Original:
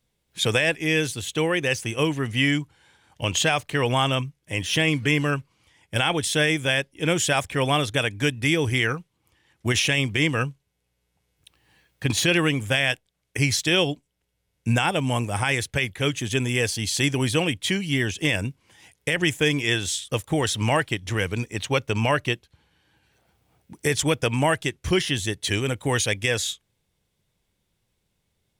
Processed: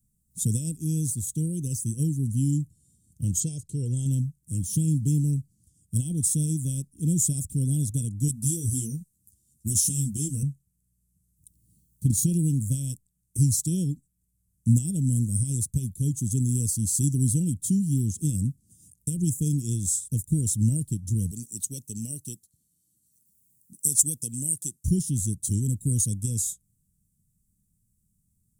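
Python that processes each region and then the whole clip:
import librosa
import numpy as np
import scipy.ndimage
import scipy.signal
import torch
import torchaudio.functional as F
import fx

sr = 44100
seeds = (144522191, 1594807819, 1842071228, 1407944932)

y = fx.chain(x, sr, fx.lowpass(hz=7400.0, slope=12),
    fx.low_shelf(hz=100.0, db=-8.5),
    fx.comb(ms=2.2, depth=0.51), at=(3.4, 4.06))
y = fx.chain(y, sr, fx.high_shelf(hz=2600.0, db=10.5),
    fx.ensemble(), at=(8.28, 10.43))
y = fx.chain(y, sr, fx.highpass(hz=630.0, slope=6),
    fx.high_shelf(hz=3500.0, db=6.0), at=(21.31, 24.84))
y = scipy.signal.sosfilt(scipy.signal.ellip(3, 1.0, 80, [210.0, 8000.0], 'bandstop', fs=sr, output='sos'), y)
y = fx.low_shelf(y, sr, hz=230.0, db=-3.0)
y = F.gain(torch.from_numpy(y), 6.5).numpy()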